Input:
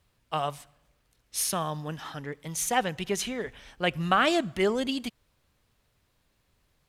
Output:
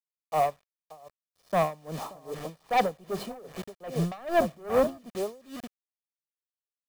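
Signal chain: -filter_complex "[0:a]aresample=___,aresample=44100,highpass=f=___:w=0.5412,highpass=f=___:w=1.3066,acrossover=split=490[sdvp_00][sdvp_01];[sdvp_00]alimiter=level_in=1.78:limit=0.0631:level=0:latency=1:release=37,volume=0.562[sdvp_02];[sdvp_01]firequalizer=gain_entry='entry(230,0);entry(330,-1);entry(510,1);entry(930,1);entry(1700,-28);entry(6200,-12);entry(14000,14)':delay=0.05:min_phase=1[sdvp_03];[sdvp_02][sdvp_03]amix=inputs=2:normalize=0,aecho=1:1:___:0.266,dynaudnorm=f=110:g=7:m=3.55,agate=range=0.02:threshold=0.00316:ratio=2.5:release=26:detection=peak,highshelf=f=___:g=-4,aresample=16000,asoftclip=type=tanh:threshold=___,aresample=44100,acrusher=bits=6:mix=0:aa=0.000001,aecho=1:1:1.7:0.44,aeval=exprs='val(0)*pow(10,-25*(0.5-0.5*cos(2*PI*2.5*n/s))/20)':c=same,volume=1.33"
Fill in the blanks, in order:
11025, 190, 190, 579, 3000, 0.1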